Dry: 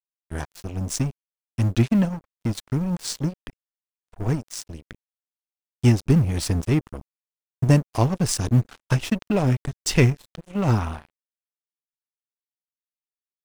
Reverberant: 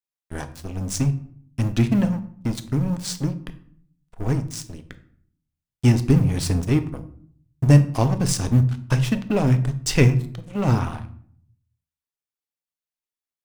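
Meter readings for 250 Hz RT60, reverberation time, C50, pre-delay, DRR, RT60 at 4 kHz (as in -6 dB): 0.85 s, 0.60 s, 14.0 dB, 3 ms, 9.0 dB, 0.40 s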